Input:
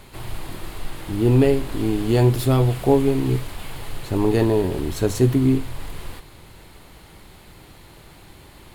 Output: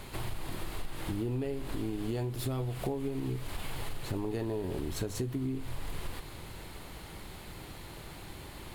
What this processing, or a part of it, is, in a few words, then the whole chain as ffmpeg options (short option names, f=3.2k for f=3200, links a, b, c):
serial compression, leveller first: -af "acompressor=threshold=-21dB:ratio=2.5,acompressor=threshold=-32dB:ratio=5"